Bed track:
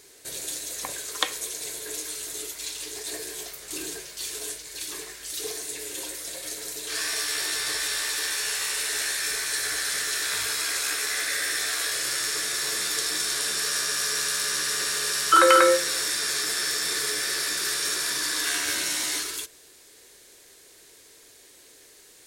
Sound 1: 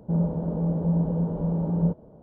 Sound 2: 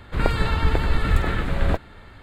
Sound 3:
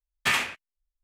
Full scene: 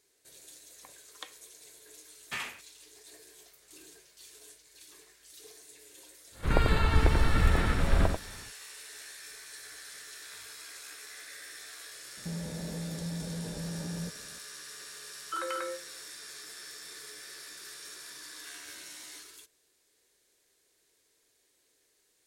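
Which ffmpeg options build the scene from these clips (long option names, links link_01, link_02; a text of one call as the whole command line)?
ffmpeg -i bed.wav -i cue0.wav -i cue1.wav -i cue2.wav -filter_complex "[0:a]volume=-19dB[link_01];[2:a]aecho=1:1:91:0.501[link_02];[1:a]alimiter=limit=-24dB:level=0:latency=1:release=71[link_03];[3:a]atrim=end=1.03,asetpts=PTS-STARTPTS,volume=-13dB,afade=type=in:duration=0.004:curve=hsin,afade=type=out:start_time=1.026:duration=0.004:curve=hsin,adelay=2060[link_04];[link_02]atrim=end=2.22,asetpts=PTS-STARTPTS,volume=-4.5dB,afade=type=in:duration=0.1,afade=type=out:start_time=2.12:duration=0.1,adelay=6310[link_05];[link_03]atrim=end=2.22,asetpts=PTS-STARTPTS,volume=-7.5dB,afade=type=in:duration=0.004:curve=hsin,afade=type=out:start_time=2.216:duration=0.004:curve=hsin,adelay=12170[link_06];[link_01][link_04][link_05][link_06]amix=inputs=4:normalize=0" out.wav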